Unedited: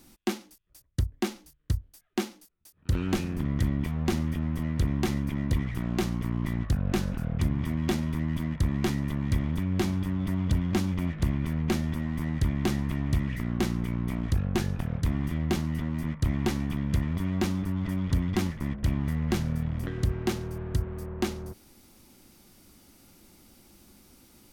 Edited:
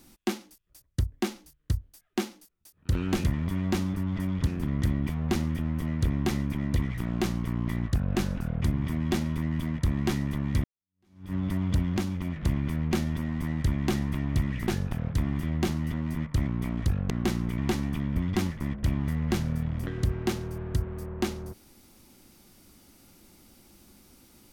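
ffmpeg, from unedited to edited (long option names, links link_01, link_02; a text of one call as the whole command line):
ffmpeg -i in.wav -filter_complex "[0:a]asplit=11[link_01][link_02][link_03][link_04][link_05][link_06][link_07][link_08][link_09][link_10][link_11];[link_01]atrim=end=3.242[link_12];[link_02]atrim=start=16.928:end=18.162[link_13];[link_03]atrim=start=3.238:end=9.41,asetpts=PTS-STARTPTS,afade=type=out:start_time=6.168:duration=0.004:curve=hsin[link_14];[link_04]atrim=start=9.41:end=10.752,asetpts=PTS-STARTPTS,afade=type=in:duration=0.7:curve=exp[link_15];[link_05]atrim=start=10.748:end=11.132,asetpts=PTS-STARTPTS,volume=-3dB[link_16];[link_06]atrim=start=11.128:end=13.452[link_17];[link_07]atrim=start=14.558:end=16.352[link_18];[link_08]atrim=start=13.928:end=14.562[link_19];[link_09]atrim=start=13.448:end=13.932[link_20];[link_10]atrim=start=16.348:end=16.932[link_21];[link_11]atrim=start=18.158[link_22];[link_12][link_13]acrossfade=duration=0.004:curve1=hsin:curve2=hsin[link_23];[link_14][link_15]concat=n=2:v=0:a=1[link_24];[link_23][link_24]acrossfade=duration=0.004:curve1=hsin:curve2=hsin[link_25];[link_25][link_16]acrossfade=duration=0.004:curve1=hsin:curve2=hsin[link_26];[link_26][link_17]acrossfade=duration=0.004:curve1=hsin:curve2=hsin[link_27];[link_27][link_18]acrossfade=duration=0.004:curve1=hsin:curve2=hsin[link_28];[link_28][link_19]acrossfade=duration=0.004:curve1=hsin:curve2=hsin[link_29];[link_29][link_20]acrossfade=duration=0.004:curve1=hsin:curve2=hsin[link_30];[link_30][link_21]acrossfade=duration=0.004:curve1=hsin:curve2=hsin[link_31];[link_31][link_22]acrossfade=duration=0.004:curve1=hsin:curve2=hsin" out.wav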